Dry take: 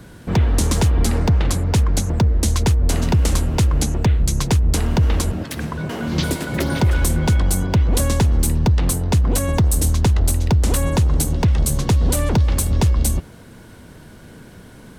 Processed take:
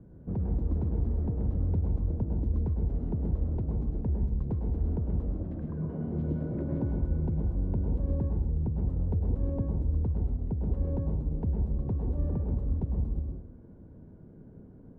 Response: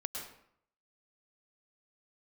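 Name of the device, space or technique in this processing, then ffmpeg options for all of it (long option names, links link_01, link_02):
television next door: -filter_complex "[0:a]acompressor=threshold=-18dB:ratio=6,lowpass=430[link_01];[1:a]atrim=start_sample=2205[link_02];[link_01][link_02]afir=irnorm=-1:irlink=0,volume=-8dB"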